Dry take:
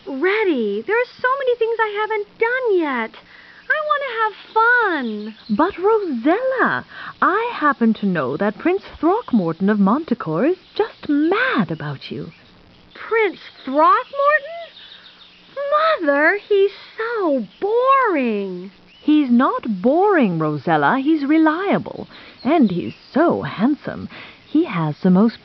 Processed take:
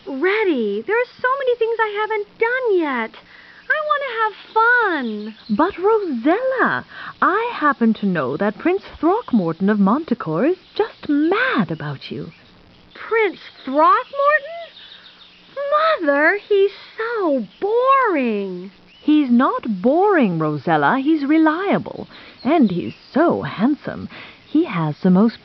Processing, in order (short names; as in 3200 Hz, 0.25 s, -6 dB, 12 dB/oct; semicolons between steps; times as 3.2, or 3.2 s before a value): 0.78–1.34 high shelf 4700 Hz -6 dB